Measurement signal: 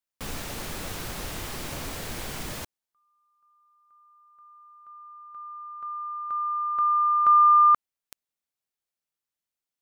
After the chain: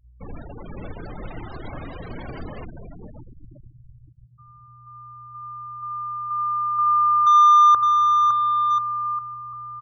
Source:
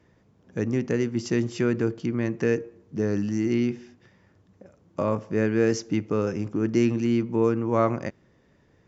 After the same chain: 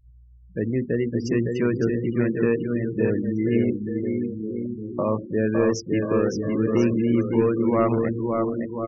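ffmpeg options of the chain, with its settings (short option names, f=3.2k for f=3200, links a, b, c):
-filter_complex "[0:a]aeval=exprs='val(0)+0.00447*(sin(2*PI*60*n/s)+sin(2*PI*2*60*n/s)/2+sin(2*PI*3*60*n/s)/3+sin(2*PI*4*60*n/s)/4+sin(2*PI*5*60*n/s)/5)':c=same,volume=14.5dB,asoftclip=hard,volume=-14.5dB,bandreject=f=50:t=h:w=6,bandreject=f=100:t=h:w=6,bandreject=f=150:t=h:w=6,bandreject=f=200:t=h:w=6,bandreject=f=250:t=h:w=6,asplit=2[a][b];[b]aecho=0:1:560|1036|1441|1785|2077:0.631|0.398|0.251|0.158|0.1[c];[a][c]amix=inputs=2:normalize=0,afftfilt=real='re*gte(hypot(re,im),0.0316)':imag='im*gte(hypot(re,im),0.0316)':win_size=1024:overlap=0.75,volume=1.5dB"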